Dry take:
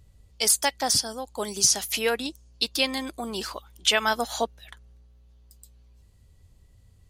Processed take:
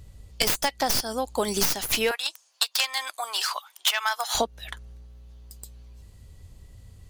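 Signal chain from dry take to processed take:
stylus tracing distortion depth 0.15 ms
0:02.11–0:04.35: high-pass filter 820 Hz 24 dB per octave
downward compressor 10 to 1, threshold −29 dBFS, peak gain reduction 13 dB
level +8.5 dB

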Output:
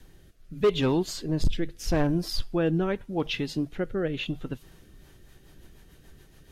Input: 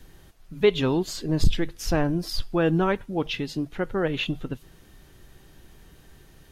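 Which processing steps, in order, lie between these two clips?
rotating-speaker cabinet horn 0.8 Hz, later 7 Hz, at 0:04.63
hard clipping −16 dBFS, distortion −15 dB

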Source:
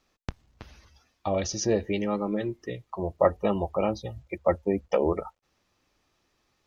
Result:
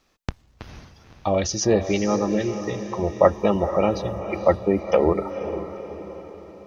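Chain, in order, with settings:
feedback delay with all-pass diffusion 483 ms, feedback 50%, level −10 dB
level +5.5 dB

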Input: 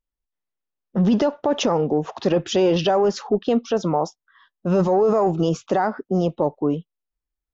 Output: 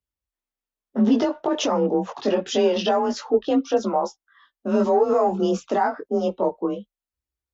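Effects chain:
frequency shifter +32 Hz
multi-voice chorus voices 2, 0.27 Hz, delay 20 ms, depth 2.4 ms
low-shelf EQ 71 Hz −12 dB
level +2 dB

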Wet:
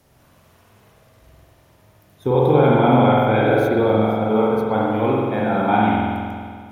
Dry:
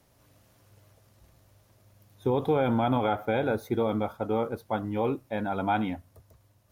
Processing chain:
spring reverb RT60 2 s, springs 46 ms, chirp 75 ms, DRR −5 dB
level +5 dB

